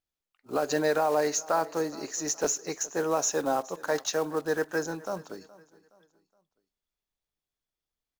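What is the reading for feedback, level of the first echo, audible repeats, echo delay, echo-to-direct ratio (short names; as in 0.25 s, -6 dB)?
39%, -21.0 dB, 2, 0.419 s, -20.5 dB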